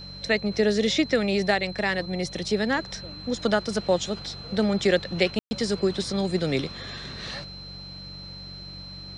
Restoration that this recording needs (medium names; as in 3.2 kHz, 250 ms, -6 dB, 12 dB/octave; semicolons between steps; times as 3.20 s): de-hum 47.2 Hz, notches 4; band-stop 4.1 kHz, Q 30; room tone fill 5.39–5.51 s